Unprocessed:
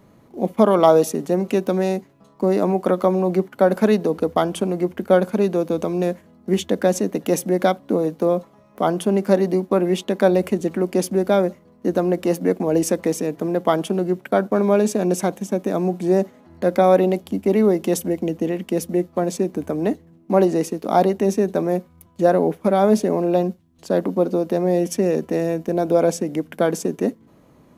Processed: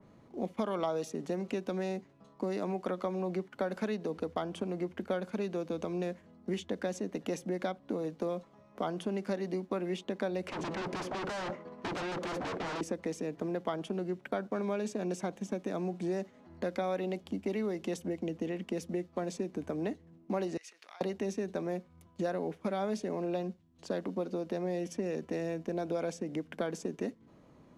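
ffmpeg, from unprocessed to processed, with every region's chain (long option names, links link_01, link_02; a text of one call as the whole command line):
ffmpeg -i in.wav -filter_complex "[0:a]asettb=1/sr,asplit=3[link_01][link_02][link_03];[link_01]atrim=end=10.484[link_04];[link_02]atrim=start=10.48:end=12.81,asetpts=PTS-STARTPTS,afade=type=in:duration=0.004:curve=qsin,afade=type=out:start_time=2.326:duration=0.004:curve=qsin,tremolo=f=16:d=0.35,asplit=2[link_05][link_06];[link_06]highpass=frequency=720:poles=1,volume=26dB,asoftclip=type=tanh:threshold=-6.5dB[link_07];[link_05][link_07]amix=inputs=2:normalize=0,lowpass=frequency=1900:poles=1,volume=-6dB,aeval=exprs='0.0794*(abs(mod(val(0)/0.0794+3,4)-2)-1)':channel_layout=same[link_08];[link_03]atrim=start=12.806[link_09];[link_04][link_08]acrossfade=duration=0.004:curve1=hsin:curve2=qsin[link_10];[link_10][link_09]acrossfade=duration=0.004:curve1=qsin:curve2=hsin,asettb=1/sr,asplit=3[link_11][link_12][link_13];[link_11]atrim=end=20.574[link_14];[link_12]atrim=start=20.57:end=21.01,asetpts=PTS-STARTPTS,afade=type=in:duration=0.004:curve=qsin,afade=type=out:start_time=0.436:duration=0.004:curve=qsin,highshelf=frequency=11000:gain=-6.5,acompressor=threshold=-27dB:ratio=20:attack=3.2:release=140:knee=1:detection=peak,highpass=frequency=1900:width_type=q:width=1.5[link_15];[link_13]atrim=start=21.006[link_16];[link_14][link_15]acrossfade=duration=0.004:curve1=hsin:curve2=qsin[link_17];[link_17][link_16]acrossfade=duration=0.004:curve1=qsin:curve2=hsin,lowpass=6900,acrossover=split=99|1600[link_18][link_19][link_20];[link_18]acompressor=threshold=-49dB:ratio=4[link_21];[link_19]acompressor=threshold=-26dB:ratio=4[link_22];[link_20]acompressor=threshold=-37dB:ratio=4[link_23];[link_21][link_22][link_23]amix=inputs=3:normalize=0,adynamicequalizer=threshold=0.00562:dfrequency=2700:dqfactor=0.7:tfrequency=2700:tqfactor=0.7:attack=5:release=100:ratio=0.375:range=1.5:mode=cutabove:tftype=highshelf,volume=-7dB" out.wav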